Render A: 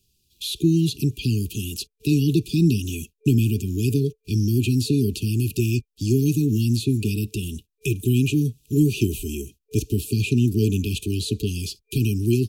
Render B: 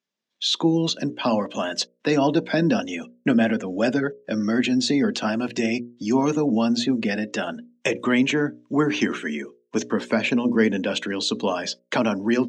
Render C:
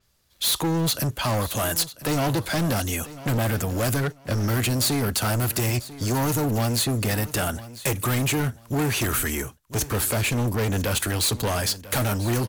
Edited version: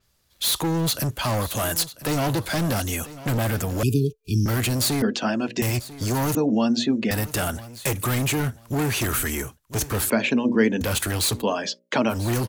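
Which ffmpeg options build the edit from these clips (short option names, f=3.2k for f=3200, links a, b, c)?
-filter_complex "[1:a]asplit=4[a][b][c][d];[2:a]asplit=6[e][f][g][h][i][j];[e]atrim=end=3.832[k];[0:a]atrim=start=3.828:end=4.462[l];[f]atrim=start=4.458:end=5.022[m];[a]atrim=start=5.018:end=5.622[n];[g]atrim=start=5.618:end=6.352[o];[b]atrim=start=6.348:end=7.112[p];[h]atrim=start=7.108:end=10.102[q];[c]atrim=start=10.098:end=10.812[r];[i]atrim=start=10.808:end=11.44[s];[d]atrim=start=11.34:end=12.18[t];[j]atrim=start=12.08[u];[k][l]acrossfade=d=0.004:c1=hsin:c2=hsin[v];[v][m]acrossfade=d=0.004:c1=hsin:c2=hsin[w];[w][n]acrossfade=d=0.004:c1=hsin:c2=hsin[x];[x][o]acrossfade=d=0.004:c1=hsin:c2=hsin[y];[y][p]acrossfade=d=0.004:c1=hsin:c2=hsin[z];[z][q]acrossfade=d=0.004:c1=hsin:c2=hsin[aa];[aa][r]acrossfade=d=0.004:c1=hsin:c2=hsin[ab];[ab][s]acrossfade=d=0.004:c1=hsin:c2=hsin[ac];[ac][t]acrossfade=d=0.1:c1=tri:c2=tri[ad];[ad][u]acrossfade=d=0.1:c1=tri:c2=tri"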